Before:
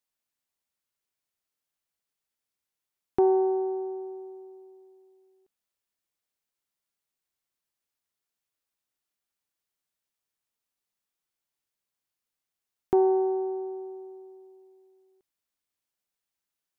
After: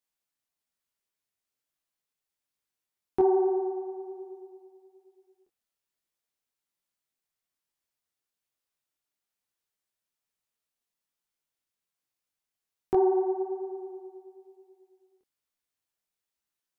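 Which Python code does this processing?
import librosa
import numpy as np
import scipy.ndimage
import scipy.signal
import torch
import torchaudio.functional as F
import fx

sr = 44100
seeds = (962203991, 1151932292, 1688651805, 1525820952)

y = fx.detune_double(x, sr, cents=40)
y = y * librosa.db_to_amplitude(2.5)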